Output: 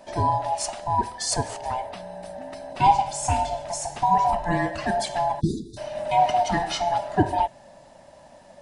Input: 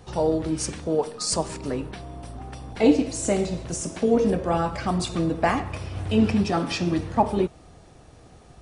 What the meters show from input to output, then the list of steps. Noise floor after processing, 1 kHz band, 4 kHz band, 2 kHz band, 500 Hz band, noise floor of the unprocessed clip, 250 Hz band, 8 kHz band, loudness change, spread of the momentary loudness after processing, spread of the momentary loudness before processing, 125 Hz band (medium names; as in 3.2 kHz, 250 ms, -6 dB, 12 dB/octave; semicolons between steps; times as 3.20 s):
-50 dBFS, +8.5 dB, +0.5 dB, +1.5 dB, -4.0 dB, -50 dBFS, -8.0 dB, 0.0 dB, 0.0 dB, 14 LU, 12 LU, -2.0 dB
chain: split-band scrambler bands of 500 Hz; spectral selection erased 5.41–5.78 s, 460–3400 Hz